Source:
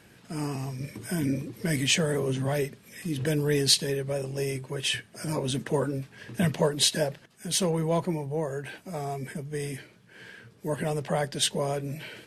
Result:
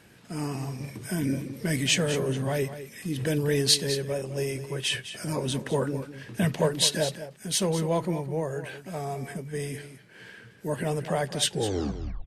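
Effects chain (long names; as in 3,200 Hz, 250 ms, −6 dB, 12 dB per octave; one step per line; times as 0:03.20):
turntable brake at the end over 0.80 s
single-tap delay 207 ms −12 dB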